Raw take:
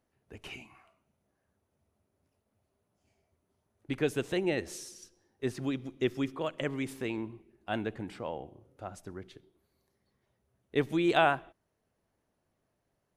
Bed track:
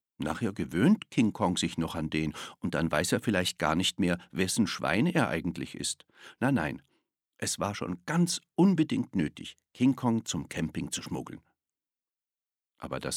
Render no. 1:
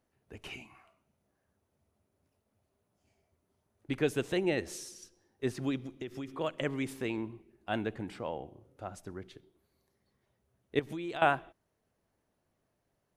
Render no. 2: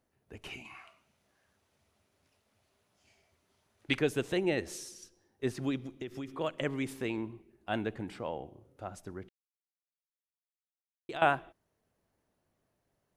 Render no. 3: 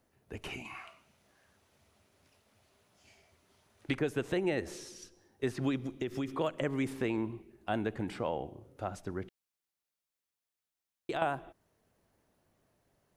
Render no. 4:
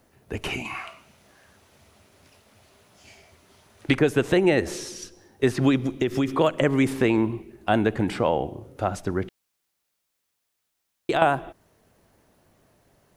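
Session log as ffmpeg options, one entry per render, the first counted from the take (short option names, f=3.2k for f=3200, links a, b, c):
-filter_complex "[0:a]asettb=1/sr,asplit=3[a][b][c];[a]atrim=end=5.794[d];[b]atrim=start=5.79:end=6.32,asetpts=PTS-STARTPTS,afade=t=in:d=0.004:c=qsin,afade=t=out:st=0.526:d=0.004:c=qsin,acompressor=threshold=-36dB:ratio=8:attack=3.2:release=140:knee=1:detection=peak[e];[c]atrim=start=6.316[f];[d][e]acrossfade=d=0.004:c1=hsin:c2=qsin[g];[g][f]acrossfade=d=0.004:c1=qsin:c2=hsin,asettb=1/sr,asplit=3[h][i][j];[h]atrim=end=10.794[k];[i]atrim=start=10.79:end=11.22,asetpts=PTS-STARTPTS,afade=t=in:d=0.004:c=qsin,afade=t=out:st=0.426:d=0.004:c=qsin,acompressor=threshold=-37dB:ratio=4:attack=3.2:release=140:knee=1:detection=peak[l];[j]atrim=start=11.216[m];[k][l]acrossfade=d=0.004:c1=hsin:c2=qsin[n];[n][m]acrossfade=d=0.004:c1=qsin:c2=hsin"
-filter_complex "[0:a]asplit=3[a][b][c];[a]afade=t=out:st=0.64:d=0.02[d];[b]equalizer=f=3.4k:w=0.31:g=13,afade=t=in:st=0.64:d=0.02,afade=t=out:st=3.98:d=0.02[e];[c]afade=t=in:st=3.98:d=0.02[f];[d][e][f]amix=inputs=3:normalize=0,asplit=3[g][h][i];[g]atrim=end=9.29,asetpts=PTS-STARTPTS,afade=t=out:st=9.286:d=0.004:c=hsin[j];[h]atrim=start=9.29:end=11.09,asetpts=PTS-STARTPTS,volume=0[k];[i]atrim=start=11.09,asetpts=PTS-STARTPTS,afade=t=in:d=0.004:c=hsin[l];[j][k][l]concat=n=3:v=0:a=1"
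-filter_complex "[0:a]acrossover=split=950|2100|5000[a][b][c][d];[a]acompressor=threshold=-33dB:ratio=4[e];[b]acompressor=threshold=-44dB:ratio=4[f];[c]acompressor=threshold=-55dB:ratio=4[g];[d]acompressor=threshold=-60dB:ratio=4[h];[e][f][g][h]amix=inputs=4:normalize=0,asplit=2[i][j];[j]alimiter=level_in=4dB:limit=-24dB:level=0:latency=1:release=392,volume=-4dB,volume=-1.5dB[k];[i][k]amix=inputs=2:normalize=0"
-af "volume=12dB"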